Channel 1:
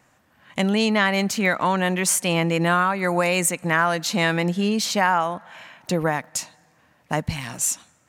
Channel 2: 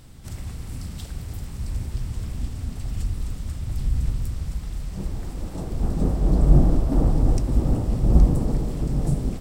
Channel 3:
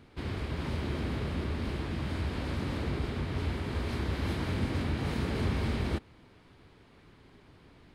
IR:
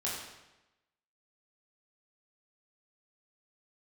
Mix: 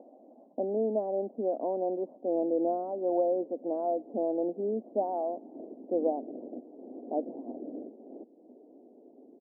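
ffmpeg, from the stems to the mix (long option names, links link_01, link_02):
-filter_complex "[0:a]lowpass=frequency=3300:width_type=q:width=7.1,volume=-3.5dB,asplit=2[link_01][link_02];[1:a]volume=16.5dB,asoftclip=hard,volume=-16.5dB,afwtdn=0.0447,acompressor=threshold=-22dB:ratio=6,volume=-5.5dB[link_03];[2:a]volume=33dB,asoftclip=hard,volume=-33dB,adelay=2250,volume=-10.5dB[link_04];[link_02]apad=whole_len=414612[link_05];[link_03][link_05]sidechaingate=range=-33dB:threshold=-50dB:ratio=16:detection=peak[link_06];[link_01][link_06][link_04]amix=inputs=3:normalize=0,acompressor=mode=upward:threshold=-31dB:ratio=2.5,asuperpass=centerf=420:order=12:qfactor=0.86"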